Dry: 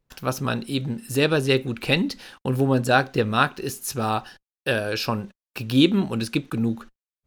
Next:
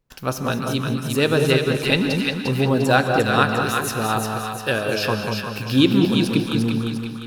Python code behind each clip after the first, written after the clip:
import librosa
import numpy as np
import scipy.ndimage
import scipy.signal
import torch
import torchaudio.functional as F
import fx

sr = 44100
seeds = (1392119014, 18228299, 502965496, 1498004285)

y = fx.echo_split(x, sr, split_hz=1100.0, low_ms=192, high_ms=350, feedback_pct=52, wet_db=-4)
y = fx.rev_gated(y, sr, seeds[0], gate_ms=230, shape='rising', drr_db=8.5)
y = y * librosa.db_to_amplitude(1.0)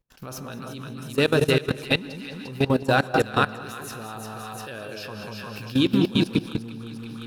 y = fx.level_steps(x, sr, step_db=18)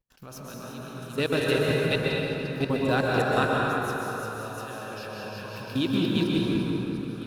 y = fx.rev_plate(x, sr, seeds[1], rt60_s=3.7, hf_ratio=0.45, predelay_ms=110, drr_db=-3.5)
y = y * librosa.db_to_amplitude(-6.5)